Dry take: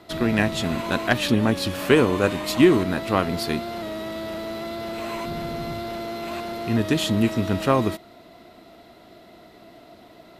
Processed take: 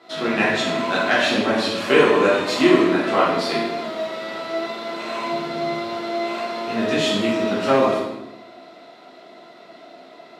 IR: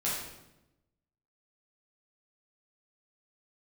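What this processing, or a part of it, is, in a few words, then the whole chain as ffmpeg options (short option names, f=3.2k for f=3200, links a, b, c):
supermarket ceiling speaker: -filter_complex "[0:a]highpass=340,lowpass=6.2k[a];[1:a]atrim=start_sample=2205[b];[a][b]afir=irnorm=-1:irlink=0,volume=-1dB"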